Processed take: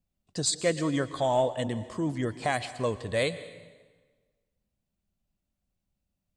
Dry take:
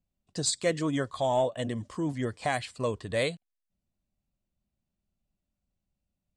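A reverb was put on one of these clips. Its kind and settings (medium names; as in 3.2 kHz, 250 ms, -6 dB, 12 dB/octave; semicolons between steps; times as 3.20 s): plate-style reverb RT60 1.4 s, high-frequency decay 0.85×, pre-delay 105 ms, DRR 14 dB; trim +1 dB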